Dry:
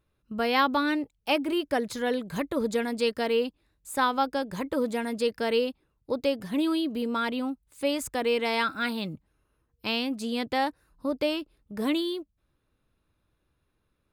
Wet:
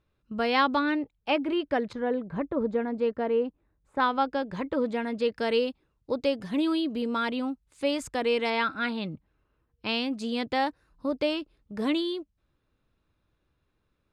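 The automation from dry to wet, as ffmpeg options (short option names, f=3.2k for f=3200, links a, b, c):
-af "asetnsamples=n=441:p=0,asendcmd='0.79 lowpass f 3100;1.93 lowpass f 1300;4 lowpass f 3500;5.36 lowpass f 6800;8.5 lowpass f 3700;9.89 lowpass f 6400',lowpass=5.9k"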